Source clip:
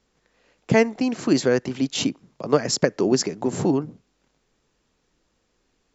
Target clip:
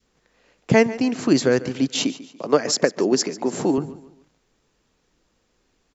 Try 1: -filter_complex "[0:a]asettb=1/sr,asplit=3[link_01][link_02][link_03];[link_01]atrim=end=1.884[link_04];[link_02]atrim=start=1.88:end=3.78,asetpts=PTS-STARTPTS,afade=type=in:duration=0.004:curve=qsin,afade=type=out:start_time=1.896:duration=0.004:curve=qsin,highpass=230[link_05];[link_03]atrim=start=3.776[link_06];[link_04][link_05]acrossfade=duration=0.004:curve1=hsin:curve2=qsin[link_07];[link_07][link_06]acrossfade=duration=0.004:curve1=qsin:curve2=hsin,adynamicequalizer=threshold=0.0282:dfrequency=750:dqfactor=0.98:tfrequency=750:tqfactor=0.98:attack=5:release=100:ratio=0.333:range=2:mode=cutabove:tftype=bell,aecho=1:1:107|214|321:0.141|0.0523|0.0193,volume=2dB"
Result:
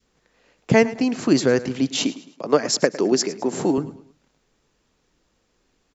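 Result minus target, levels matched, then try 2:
echo 37 ms early
-filter_complex "[0:a]asettb=1/sr,asplit=3[link_01][link_02][link_03];[link_01]atrim=end=1.884[link_04];[link_02]atrim=start=1.88:end=3.78,asetpts=PTS-STARTPTS,afade=type=in:duration=0.004:curve=qsin,afade=type=out:start_time=1.896:duration=0.004:curve=qsin,highpass=230[link_05];[link_03]atrim=start=3.776[link_06];[link_04][link_05]acrossfade=duration=0.004:curve1=hsin:curve2=qsin[link_07];[link_07][link_06]acrossfade=duration=0.004:curve1=qsin:curve2=hsin,adynamicequalizer=threshold=0.0282:dfrequency=750:dqfactor=0.98:tfrequency=750:tqfactor=0.98:attack=5:release=100:ratio=0.333:range=2:mode=cutabove:tftype=bell,aecho=1:1:144|288|432:0.141|0.0523|0.0193,volume=2dB"

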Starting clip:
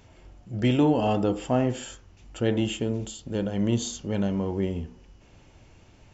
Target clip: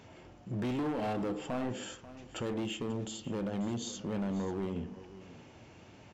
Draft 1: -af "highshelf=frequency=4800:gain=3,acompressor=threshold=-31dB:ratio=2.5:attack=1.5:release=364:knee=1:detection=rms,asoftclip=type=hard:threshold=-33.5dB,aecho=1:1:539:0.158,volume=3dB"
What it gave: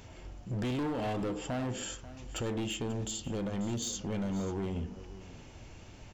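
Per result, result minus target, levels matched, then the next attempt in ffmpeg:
8,000 Hz band +6.0 dB; 125 Hz band +2.5 dB
-af "highshelf=frequency=4800:gain=-7.5,acompressor=threshold=-31dB:ratio=2.5:attack=1.5:release=364:knee=1:detection=rms,asoftclip=type=hard:threshold=-33.5dB,aecho=1:1:539:0.158,volume=3dB"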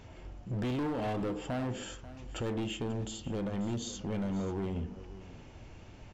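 125 Hz band +3.0 dB
-af "highshelf=frequency=4800:gain=-7.5,acompressor=threshold=-31dB:ratio=2.5:attack=1.5:release=364:knee=1:detection=rms,highpass=130,asoftclip=type=hard:threshold=-33.5dB,aecho=1:1:539:0.158,volume=3dB"

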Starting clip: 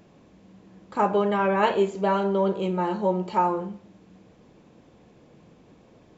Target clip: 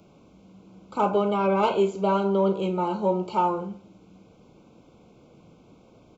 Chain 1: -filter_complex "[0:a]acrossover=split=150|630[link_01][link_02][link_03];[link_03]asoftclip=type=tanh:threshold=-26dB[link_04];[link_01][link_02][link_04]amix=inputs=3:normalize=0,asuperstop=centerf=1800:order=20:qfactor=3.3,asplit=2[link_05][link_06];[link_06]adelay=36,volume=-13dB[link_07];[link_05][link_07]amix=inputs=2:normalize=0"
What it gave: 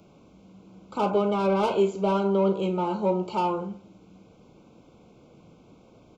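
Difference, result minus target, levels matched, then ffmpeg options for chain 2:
soft clipping: distortion +10 dB
-filter_complex "[0:a]acrossover=split=150|630[link_01][link_02][link_03];[link_03]asoftclip=type=tanh:threshold=-16.5dB[link_04];[link_01][link_02][link_04]amix=inputs=3:normalize=0,asuperstop=centerf=1800:order=20:qfactor=3.3,asplit=2[link_05][link_06];[link_06]adelay=36,volume=-13dB[link_07];[link_05][link_07]amix=inputs=2:normalize=0"

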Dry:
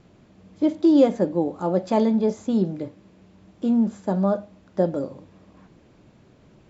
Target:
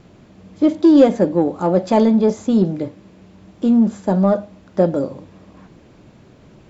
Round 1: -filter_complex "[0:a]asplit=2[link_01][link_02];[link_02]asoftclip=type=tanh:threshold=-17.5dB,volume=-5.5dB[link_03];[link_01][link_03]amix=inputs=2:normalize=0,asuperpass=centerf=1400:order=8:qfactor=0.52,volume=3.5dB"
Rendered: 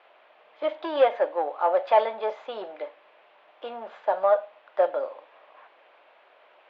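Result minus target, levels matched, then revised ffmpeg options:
1,000 Hz band +9.0 dB
-filter_complex "[0:a]asplit=2[link_01][link_02];[link_02]asoftclip=type=tanh:threshold=-17.5dB,volume=-5.5dB[link_03];[link_01][link_03]amix=inputs=2:normalize=0,volume=3.5dB"

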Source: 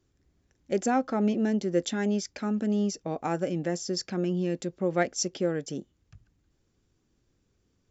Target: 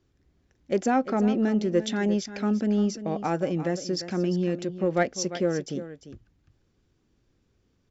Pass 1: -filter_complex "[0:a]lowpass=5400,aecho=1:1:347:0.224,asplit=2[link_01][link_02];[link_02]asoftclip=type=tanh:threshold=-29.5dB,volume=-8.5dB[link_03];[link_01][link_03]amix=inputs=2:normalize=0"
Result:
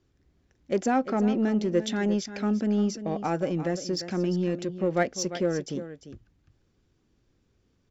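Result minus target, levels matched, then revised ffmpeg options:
soft clipping: distortion +10 dB
-filter_complex "[0:a]lowpass=5400,aecho=1:1:347:0.224,asplit=2[link_01][link_02];[link_02]asoftclip=type=tanh:threshold=-19.5dB,volume=-8.5dB[link_03];[link_01][link_03]amix=inputs=2:normalize=0"

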